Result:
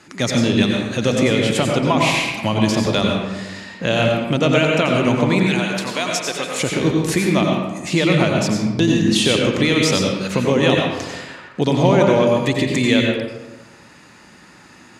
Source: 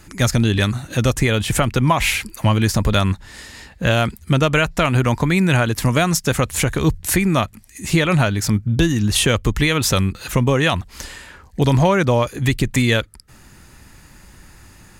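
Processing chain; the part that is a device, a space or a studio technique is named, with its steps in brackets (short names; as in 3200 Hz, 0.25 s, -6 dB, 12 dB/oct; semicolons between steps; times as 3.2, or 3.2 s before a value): 5.43–6.62 HPF 1100 Hz 6 dB/oct; dynamic EQ 1400 Hz, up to -8 dB, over -35 dBFS, Q 1.1; supermarket ceiling speaker (BPF 210–6100 Hz; reverb RT60 1.1 s, pre-delay 83 ms, DRR 0 dB); gain +1.5 dB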